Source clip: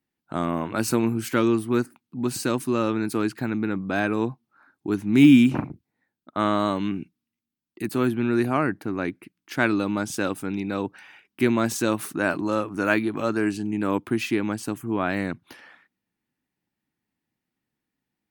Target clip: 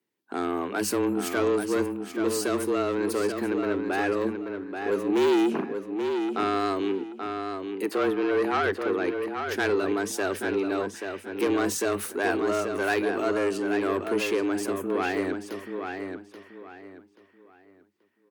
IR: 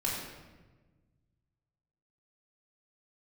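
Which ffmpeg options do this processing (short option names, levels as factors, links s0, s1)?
-filter_complex "[0:a]asettb=1/sr,asplit=3[s0][s1][s2];[s0]atrim=end=7.864[s3];[s1]atrim=start=7.86:end=8.98,asetpts=PTS-STARTPTS,afade=t=in:d=0.004:c=qsin,afade=t=out:st=1.116:d=0.004:c=qsin,asplit=2[s4][s5];[s5]highpass=f=720:p=1,volume=5.62,asoftclip=type=tanh:threshold=0.376[s6];[s4][s6]amix=inputs=2:normalize=0,lowpass=f=1400:p=1,volume=0.501[s7];[s2]atrim=start=8.976[s8];[s3][s7]acrossfade=d=0.004:c1=hsin:c2=qsin[s9];[s9][s8]acrossfade=d=0.004:c1=qsin:c2=hsin,asoftclip=type=tanh:threshold=0.1,asplit=2[s10][s11];[s11]adelay=832,lowpass=f=4400:p=1,volume=0.501,asplit=2[s12][s13];[s13]adelay=832,lowpass=f=4400:p=1,volume=0.29,asplit=2[s14][s15];[s15]adelay=832,lowpass=f=4400:p=1,volume=0.29,asplit=2[s16][s17];[s17]adelay=832,lowpass=f=4400:p=1,volume=0.29[s18];[s10][s12][s14][s16][s18]amix=inputs=5:normalize=0,afreqshift=93,asplit=2[s19][s20];[1:a]atrim=start_sample=2205,atrim=end_sample=3528[s21];[s20][s21]afir=irnorm=-1:irlink=0,volume=0.0668[s22];[s19][s22]amix=inputs=2:normalize=0"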